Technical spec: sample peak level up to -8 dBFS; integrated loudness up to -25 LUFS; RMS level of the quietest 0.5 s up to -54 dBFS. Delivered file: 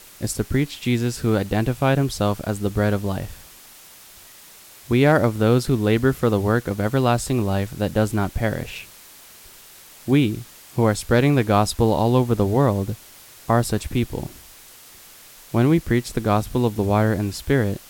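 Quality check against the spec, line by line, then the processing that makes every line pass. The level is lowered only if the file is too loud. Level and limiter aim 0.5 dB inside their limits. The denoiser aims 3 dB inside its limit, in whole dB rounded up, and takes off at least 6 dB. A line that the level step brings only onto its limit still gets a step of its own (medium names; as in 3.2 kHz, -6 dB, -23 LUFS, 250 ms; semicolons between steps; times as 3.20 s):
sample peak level -4.5 dBFS: fail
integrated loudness -21.0 LUFS: fail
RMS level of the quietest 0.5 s -46 dBFS: fail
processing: noise reduction 7 dB, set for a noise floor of -46 dBFS; trim -4.5 dB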